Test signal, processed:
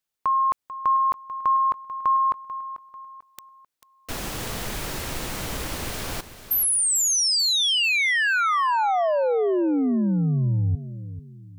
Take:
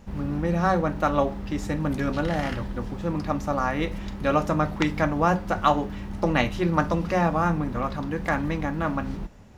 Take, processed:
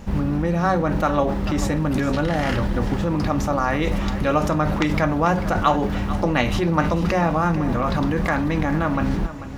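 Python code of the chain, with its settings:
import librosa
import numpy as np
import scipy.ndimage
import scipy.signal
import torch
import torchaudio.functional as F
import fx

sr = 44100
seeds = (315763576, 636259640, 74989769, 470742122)

p1 = fx.over_compress(x, sr, threshold_db=-30.0, ratio=-0.5)
p2 = x + (p1 * 10.0 ** (0.0 / 20.0))
p3 = fx.echo_feedback(p2, sr, ms=442, feedback_pct=37, wet_db=-13.5)
y = p3 * 10.0 ** (1.5 / 20.0)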